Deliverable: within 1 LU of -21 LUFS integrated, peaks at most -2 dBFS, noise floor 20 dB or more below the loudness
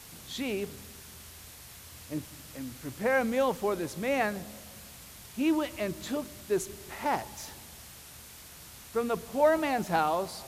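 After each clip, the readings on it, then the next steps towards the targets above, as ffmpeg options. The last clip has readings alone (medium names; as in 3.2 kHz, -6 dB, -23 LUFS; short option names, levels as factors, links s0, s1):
noise floor -49 dBFS; noise floor target -51 dBFS; loudness -31.0 LUFS; peak level -13.0 dBFS; loudness target -21.0 LUFS
-> -af "afftdn=nr=6:nf=-49"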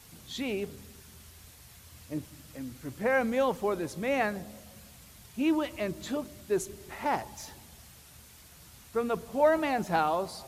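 noise floor -54 dBFS; loudness -31.0 LUFS; peak level -13.0 dBFS; loudness target -21.0 LUFS
-> -af "volume=3.16"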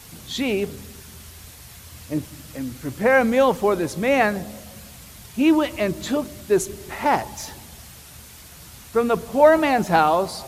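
loudness -21.0 LUFS; peak level -3.0 dBFS; noise floor -44 dBFS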